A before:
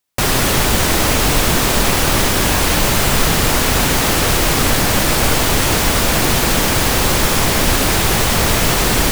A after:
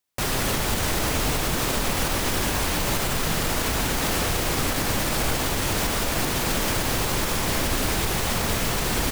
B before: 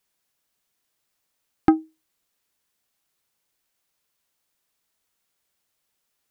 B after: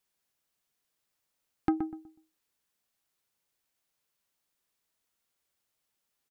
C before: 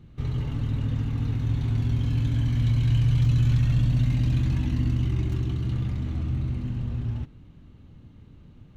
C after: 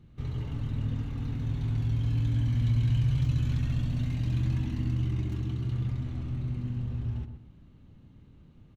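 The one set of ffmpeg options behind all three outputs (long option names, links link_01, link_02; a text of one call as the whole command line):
ffmpeg -i in.wav -filter_complex "[0:a]alimiter=limit=-9dB:level=0:latency=1:release=111,asplit=2[link_01][link_02];[link_02]adelay=123,lowpass=frequency=1200:poles=1,volume=-7dB,asplit=2[link_03][link_04];[link_04]adelay=123,lowpass=frequency=1200:poles=1,volume=0.29,asplit=2[link_05][link_06];[link_06]adelay=123,lowpass=frequency=1200:poles=1,volume=0.29,asplit=2[link_07][link_08];[link_08]adelay=123,lowpass=frequency=1200:poles=1,volume=0.29[link_09];[link_01][link_03][link_05][link_07][link_09]amix=inputs=5:normalize=0,volume=-5.5dB" out.wav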